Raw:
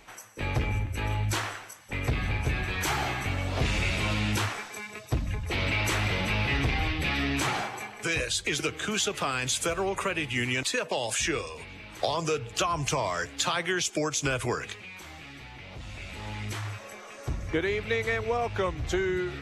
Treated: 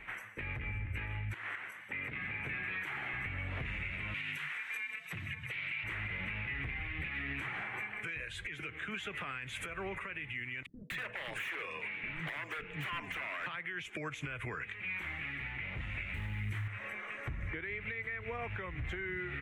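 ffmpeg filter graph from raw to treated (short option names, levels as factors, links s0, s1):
-filter_complex "[0:a]asettb=1/sr,asplit=3[s0][s1][s2];[s0]atrim=end=1.344[s3];[s1]atrim=start=1.34:end=3.14,asetpts=PTS-STARTPTS,afade=t=in:d=0.004:c=qsin,afade=t=out:st=1.796:d=0.004:c=qsin,highpass=170,acompressor=threshold=0.01:ratio=2.5:attack=3.2:release=140:knee=1:detection=peak[s4];[s2]atrim=start=3.136[s5];[s3][s4]acrossfade=d=0.004:c1=hsin:c2=qsin[s6];[s6][s5]acrossfade=d=0.004:c1=qsin:c2=hsin,asettb=1/sr,asplit=3[s7][s8][s9];[s7]atrim=end=4.144[s10];[s8]atrim=start=4.14:end=5.84,asetpts=PTS-STARTPTS,afade=t=in:d=0.004:c=qsin,afade=t=out:st=1.696:d=0.004:c=qsin,tiltshelf=f=1200:g=-9.5,afreqshift=45,asoftclip=type=hard:threshold=0.158[s11];[s9]atrim=start=5.836[s12];[s10][s11]acrossfade=d=0.004:c1=hsin:c2=qsin[s13];[s13][s12]acrossfade=d=0.004:c1=qsin:c2=hsin,asettb=1/sr,asplit=3[s14][s15][s16];[s14]atrim=end=10.664[s17];[s15]atrim=start=10.66:end=13.46,asetpts=PTS-STARTPTS,afade=t=in:d=0.004:c=qsin,afade=t=out:st=2.796:d=0.004:c=qsin,highpass=200,lowpass=7900,aeval=exprs='0.0398*(abs(mod(val(0)/0.0398+3,4)-2)-1)':c=same,acrossover=split=290[s18][s19];[s19]adelay=240[s20];[s18][s20]amix=inputs=2:normalize=0,atrim=end_sample=123480[s21];[s16]atrim=start=13.456[s22];[s17][s21]acrossfade=d=0.004:c1=hsin:c2=qsin[s23];[s23][s22]acrossfade=d=0.004:c1=qsin:c2=hsin,asettb=1/sr,asplit=3[s24][s25][s26];[s24]atrim=end=16.144[s27];[s25]atrim=start=16.14:end=16.68,asetpts=PTS-STARTPTS,afade=t=in:d=0.004:c=qsin,afade=t=out:st=0.536:d=0.004:c=qsin,bass=f=250:g=10,treble=f=4000:g=9,acrusher=bits=6:mix=0:aa=0.5[s28];[s26]atrim=start=16.676[s29];[s27][s28]acrossfade=d=0.004:c1=hsin:c2=qsin[s30];[s30][s29]acrossfade=d=0.004:c1=qsin:c2=hsin,firequalizer=gain_entry='entry(180,0);entry(260,-4);entry(720,-7);entry(2000,10);entry(4800,-24);entry(9400,-14)':delay=0.05:min_phase=1,acompressor=threshold=0.0224:ratio=6,alimiter=level_in=2.24:limit=0.0631:level=0:latency=1:release=187,volume=0.447,volume=1.12"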